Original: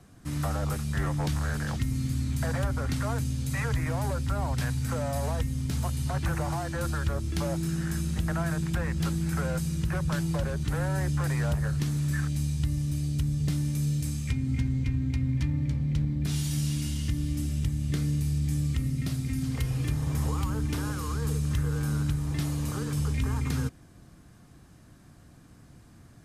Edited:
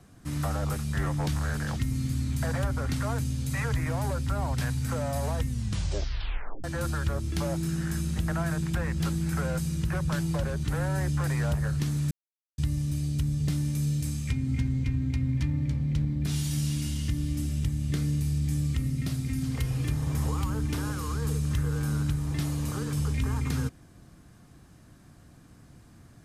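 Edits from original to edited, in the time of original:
0:05.46: tape stop 1.18 s
0:12.11–0:12.58: silence

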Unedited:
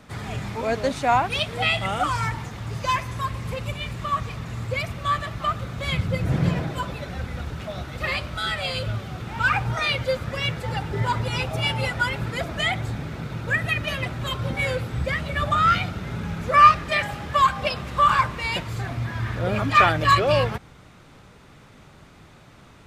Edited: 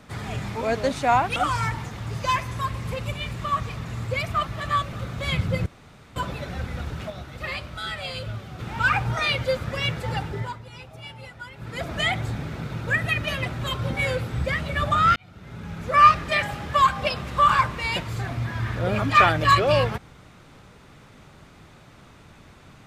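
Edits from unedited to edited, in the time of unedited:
0:01.36–0:01.96: remove
0:04.94–0:05.53: reverse
0:06.26–0:06.76: fill with room tone
0:07.70–0:09.19: clip gain −5 dB
0:10.79–0:12.54: duck −16 dB, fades 0.39 s
0:15.76–0:16.77: fade in

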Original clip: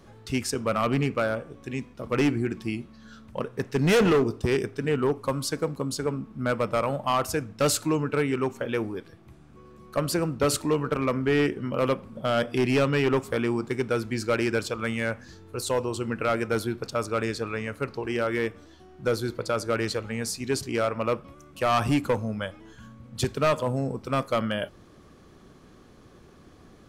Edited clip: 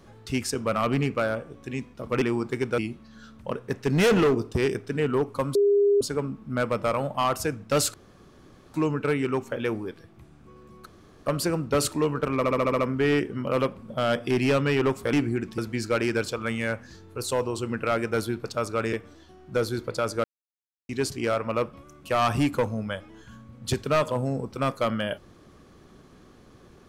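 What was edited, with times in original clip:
0:02.22–0:02.67: swap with 0:13.40–0:13.96
0:05.44–0:05.90: beep over 405 Hz −16.5 dBFS
0:07.83: splice in room tone 0.80 s
0:09.95: splice in room tone 0.40 s
0:11.06: stutter 0.07 s, 7 plays
0:17.31–0:18.44: remove
0:19.75–0:20.40: silence

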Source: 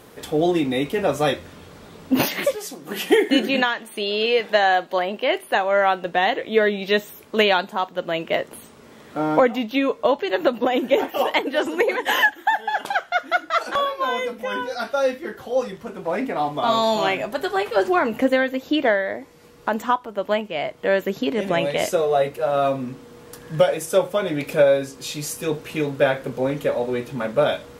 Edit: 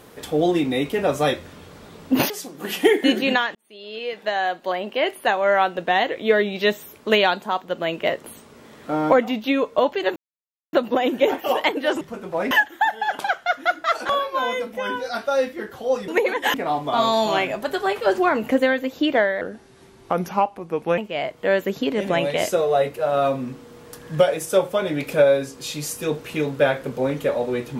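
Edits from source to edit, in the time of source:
0:02.30–0:02.57: remove
0:03.82–0:05.41: fade in
0:10.43: splice in silence 0.57 s
0:11.71–0:12.17: swap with 0:15.74–0:16.24
0:19.11–0:20.38: play speed 81%

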